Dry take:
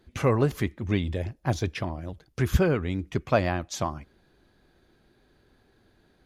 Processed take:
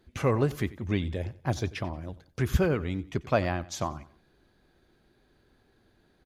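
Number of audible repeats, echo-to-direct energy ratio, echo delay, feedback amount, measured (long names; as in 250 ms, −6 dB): 2, −18.5 dB, 91 ms, 35%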